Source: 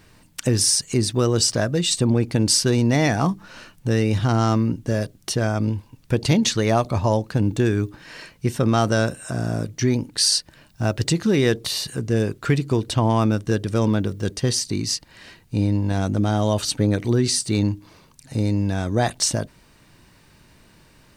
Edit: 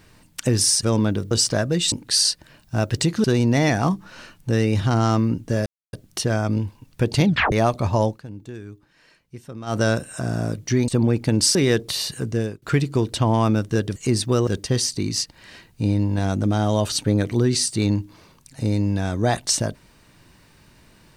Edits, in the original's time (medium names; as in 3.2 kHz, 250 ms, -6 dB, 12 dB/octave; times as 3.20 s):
0.83–1.34 s: swap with 13.72–14.20 s
1.95–2.62 s: swap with 9.99–11.31 s
5.04 s: insert silence 0.27 s
6.36 s: tape stop 0.27 s
7.20–8.89 s: dip -16.5 dB, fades 0.12 s
12.06–12.38 s: fade out, to -24 dB